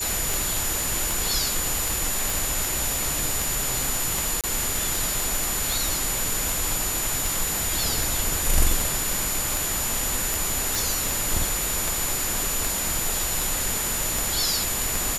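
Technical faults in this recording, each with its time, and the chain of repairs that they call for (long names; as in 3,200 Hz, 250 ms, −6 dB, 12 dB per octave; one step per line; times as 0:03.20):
scratch tick 78 rpm
whistle 7,000 Hz −29 dBFS
0:02.30: click
0:04.41–0:04.44: drop-out 27 ms
0:10.75: click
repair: click removal
notch filter 7,000 Hz, Q 30
repair the gap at 0:04.41, 27 ms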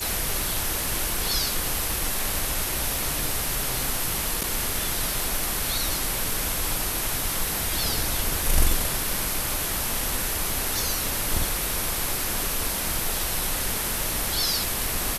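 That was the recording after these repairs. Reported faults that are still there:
none of them is left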